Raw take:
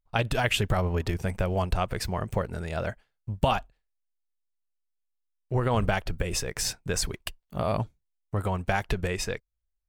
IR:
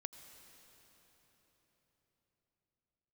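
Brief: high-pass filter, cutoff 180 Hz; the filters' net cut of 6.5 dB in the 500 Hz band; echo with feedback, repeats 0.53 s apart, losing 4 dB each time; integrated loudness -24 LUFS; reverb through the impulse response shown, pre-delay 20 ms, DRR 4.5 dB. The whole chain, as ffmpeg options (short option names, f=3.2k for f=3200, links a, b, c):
-filter_complex "[0:a]highpass=180,equalizer=f=500:t=o:g=-8.5,aecho=1:1:530|1060|1590|2120|2650|3180|3710|4240|4770:0.631|0.398|0.25|0.158|0.0994|0.0626|0.0394|0.0249|0.0157,asplit=2[a][b];[1:a]atrim=start_sample=2205,adelay=20[c];[b][c]afir=irnorm=-1:irlink=0,volume=-1dB[d];[a][d]amix=inputs=2:normalize=0,volume=6dB"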